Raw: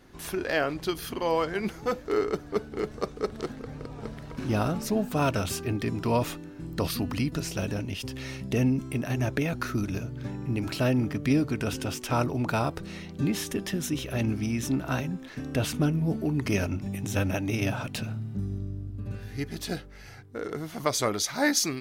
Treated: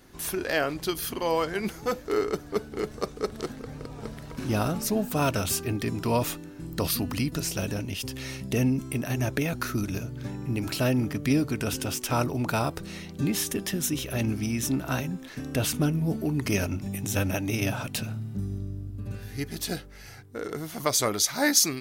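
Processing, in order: treble shelf 6.4 kHz +10.5 dB

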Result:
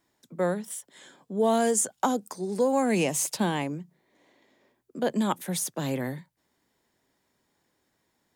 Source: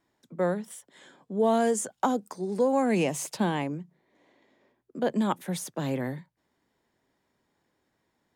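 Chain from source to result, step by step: treble shelf 4.3 kHz +9 dB

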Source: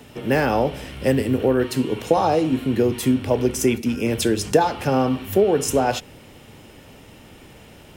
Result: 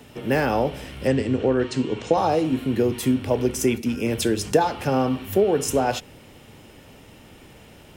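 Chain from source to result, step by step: 1.07–2.18 s: steep low-pass 8.1 kHz 48 dB/octave; trim -2 dB

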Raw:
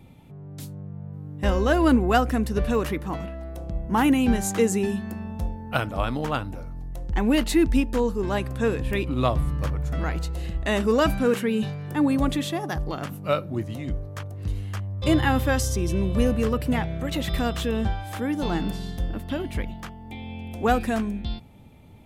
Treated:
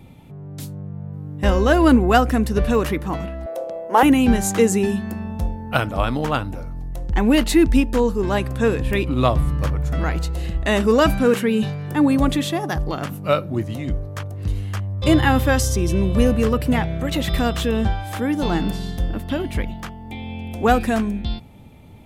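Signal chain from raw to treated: 3.46–4.03 s: resonant high-pass 540 Hz, resonance Q 4.9; trim +5 dB

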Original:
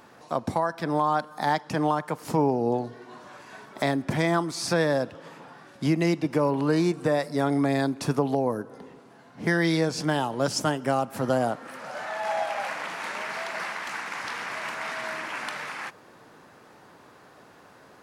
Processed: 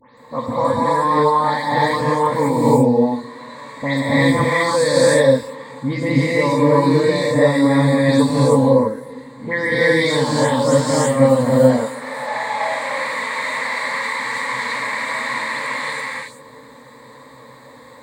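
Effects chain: delay that grows with frequency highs late, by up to 174 ms; rippled EQ curve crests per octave 1, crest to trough 16 dB; gated-style reverb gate 360 ms rising, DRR -7 dB

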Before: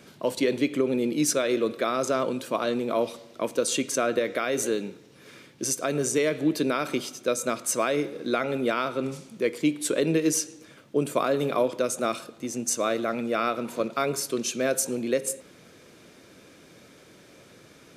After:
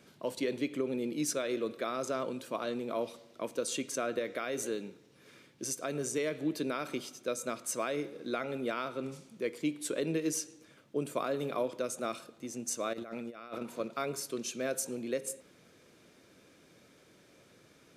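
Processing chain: 12.93–13.63 s: compressor with a negative ratio -32 dBFS, ratio -0.5; trim -9 dB

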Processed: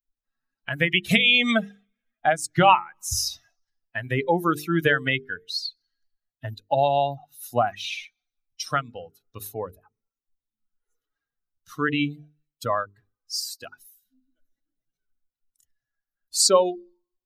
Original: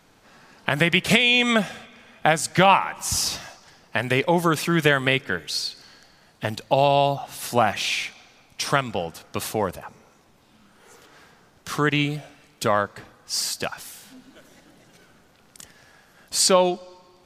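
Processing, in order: expander on every frequency bin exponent 2; hum notches 50/100/150/200/250/300/350/400/450 Hz; trim +2.5 dB

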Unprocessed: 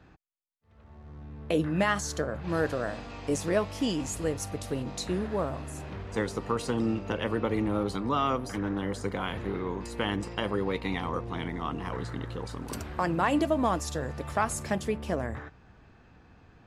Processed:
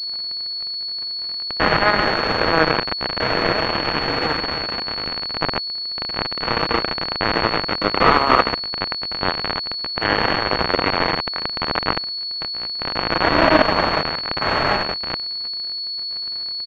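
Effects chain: spectrogram pixelated in time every 400 ms; in parallel at 0 dB: compression 10:1, threshold -44 dBFS, peak gain reduction 17.5 dB; on the sum: Bessel high-pass 360 Hz, order 2; tilt EQ +3.5 dB/octave; comb 6.2 ms, depth 47%; feedback delay 135 ms, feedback 43%, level -6 dB; on a send at -11 dB: reverberation, pre-delay 3 ms; on the sum: Chebyshev shaper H 3 -20 dB, 7 -42 dB, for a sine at -15.5 dBFS; bit crusher 5-bit; crackle 130 per s -49 dBFS; loudness maximiser +24.5 dB; class-D stage that switches slowly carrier 4.4 kHz; trim -1.5 dB

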